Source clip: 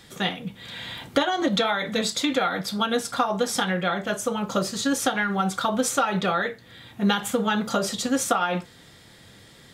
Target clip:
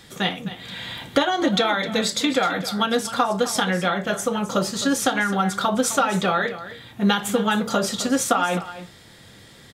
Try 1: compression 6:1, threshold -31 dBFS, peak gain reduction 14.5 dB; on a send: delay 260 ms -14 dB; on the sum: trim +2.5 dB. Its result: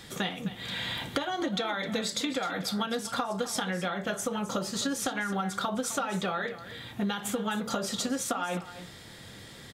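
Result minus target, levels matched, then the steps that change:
compression: peak gain reduction +14.5 dB
remove: compression 6:1, threshold -31 dBFS, peak gain reduction 14.5 dB

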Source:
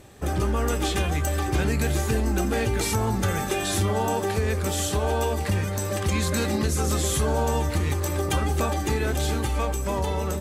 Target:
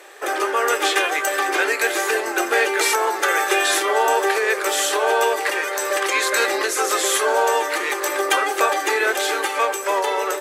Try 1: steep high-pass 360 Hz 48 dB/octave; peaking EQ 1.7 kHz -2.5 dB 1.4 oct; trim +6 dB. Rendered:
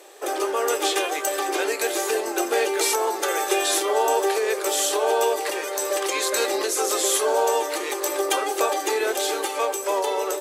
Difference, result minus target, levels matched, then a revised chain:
2 kHz band -6.0 dB
steep high-pass 360 Hz 48 dB/octave; peaking EQ 1.7 kHz +8.5 dB 1.4 oct; trim +6 dB

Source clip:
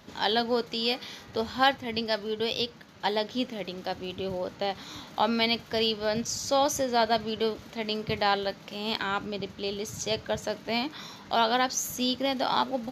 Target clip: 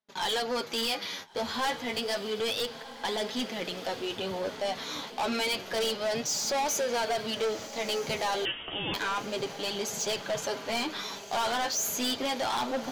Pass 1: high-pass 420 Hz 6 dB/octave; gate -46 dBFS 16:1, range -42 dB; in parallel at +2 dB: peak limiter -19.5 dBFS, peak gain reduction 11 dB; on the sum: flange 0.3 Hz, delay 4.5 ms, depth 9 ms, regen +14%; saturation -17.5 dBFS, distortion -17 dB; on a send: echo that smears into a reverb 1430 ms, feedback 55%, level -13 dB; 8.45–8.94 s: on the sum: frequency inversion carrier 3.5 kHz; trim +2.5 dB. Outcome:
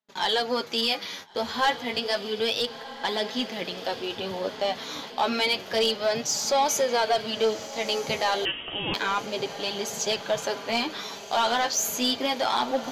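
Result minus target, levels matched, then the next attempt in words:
saturation: distortion -10 dB
high-pass 420 Hz 6 dB/octave; gate -46 dBFS 16:1, range -42 dB; in parallel at +2 dB: peak limiter -19.5 dBFS, peak gain reduction 11 dB; on the sum: flange 0.3 Hz, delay 4.5 ms, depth 9 ms, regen +14%; saturation -28.5 dBFS, distortion -7 dB; on a send: echo that smears into a reverb 1430 ms, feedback 55%, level -13 dB; 8.45–8.94 s: on the sum: frequency inversion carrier 3.5 kHz; trim +2.5 dB

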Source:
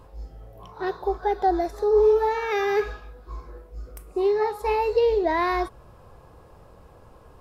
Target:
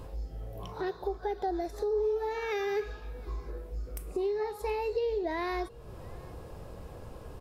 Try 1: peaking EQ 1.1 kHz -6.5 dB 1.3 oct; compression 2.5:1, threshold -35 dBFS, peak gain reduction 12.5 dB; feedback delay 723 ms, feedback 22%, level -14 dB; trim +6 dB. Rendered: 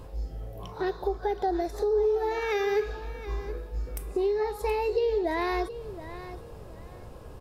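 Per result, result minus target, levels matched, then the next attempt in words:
echo-to-direct +11 dB; compression: peak gain reduction -4.5 dB
peaking EQ 1.1 kHz -6.5 dB 1.3 oct; compression 2.5:1, threshold -35 dBFS, peak gain reduction 12.5 dB; feedback delay 723 ms, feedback 22%, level -25 dB; trim +6 dB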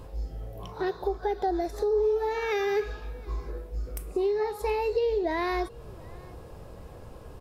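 compression: peak gain reduction -4.5 dB
peaking EQ 1.1 kHz -6.5 dB 1.3 oct; compression 2.5:1, threshold -42.5 dBFS, peak gain reduction 17 dB; feedback delay 723 ms, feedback 22%, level -25 dB; trim +6 dB

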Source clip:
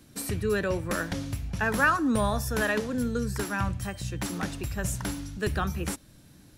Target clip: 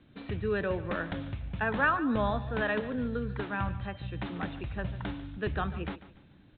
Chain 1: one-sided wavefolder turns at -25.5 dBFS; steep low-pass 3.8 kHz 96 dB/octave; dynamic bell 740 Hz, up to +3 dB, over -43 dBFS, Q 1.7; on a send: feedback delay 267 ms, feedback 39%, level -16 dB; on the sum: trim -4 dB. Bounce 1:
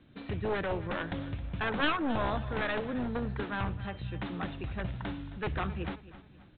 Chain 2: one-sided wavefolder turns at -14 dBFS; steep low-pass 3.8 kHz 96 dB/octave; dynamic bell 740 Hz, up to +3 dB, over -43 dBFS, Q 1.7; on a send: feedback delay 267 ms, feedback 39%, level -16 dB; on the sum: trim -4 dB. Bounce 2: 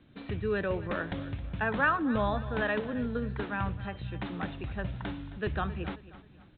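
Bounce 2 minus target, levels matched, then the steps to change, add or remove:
echo 122 ms late
change: feedback delay 145 ms, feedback 39%, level -16 dB

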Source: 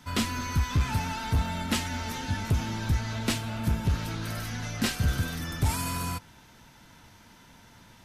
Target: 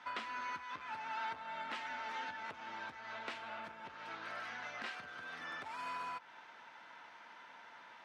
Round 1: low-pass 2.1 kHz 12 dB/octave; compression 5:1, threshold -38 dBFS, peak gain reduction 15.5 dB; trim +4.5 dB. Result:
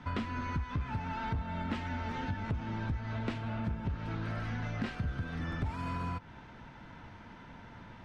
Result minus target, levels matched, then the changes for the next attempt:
1 kHz band -5.0 dB
add after compression: high-pass 780 Hz 12 dB/octave

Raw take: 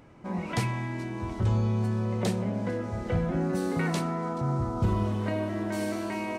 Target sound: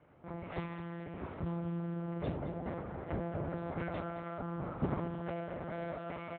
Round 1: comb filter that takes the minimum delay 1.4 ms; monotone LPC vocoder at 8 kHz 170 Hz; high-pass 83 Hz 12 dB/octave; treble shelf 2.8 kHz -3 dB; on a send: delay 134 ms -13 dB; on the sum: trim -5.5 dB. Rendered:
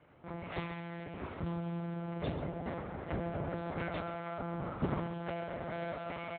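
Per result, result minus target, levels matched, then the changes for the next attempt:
echo 83 ms early; 4 kHz band +6.0 dB
change: delay 217 ms -13 dB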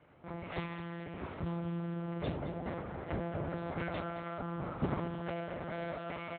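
4 kHz band +6.0 dB
change: treble shelf 2.8 kHz -14.5 dB

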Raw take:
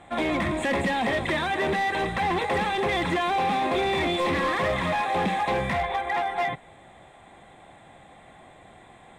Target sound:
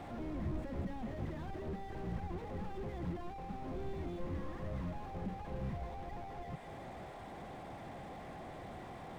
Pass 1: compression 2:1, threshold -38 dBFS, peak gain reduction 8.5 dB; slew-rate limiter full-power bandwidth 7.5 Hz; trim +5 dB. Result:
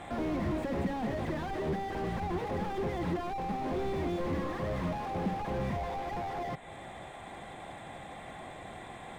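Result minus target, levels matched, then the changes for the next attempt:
slew-rate limiter: distortion -9 dB
change: slew-rate limiter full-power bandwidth 2 Hz

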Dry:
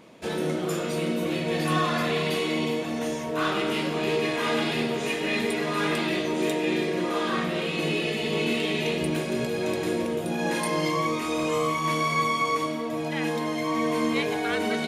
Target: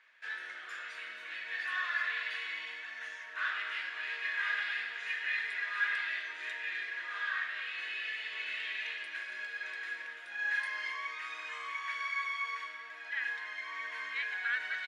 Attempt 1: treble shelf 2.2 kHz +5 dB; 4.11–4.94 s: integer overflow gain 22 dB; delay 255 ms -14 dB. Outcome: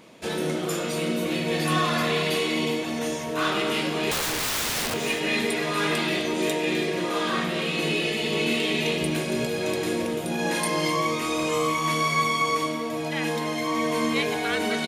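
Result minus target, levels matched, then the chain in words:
2 kHz band -7.0 dB
ladder band-pass 1.8 kHz, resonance 75%; treble shelf 2.2 kHz +5 dB; 4.11–4.94 s: integer overflow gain 22 dB; delay 255 ms -14 dB

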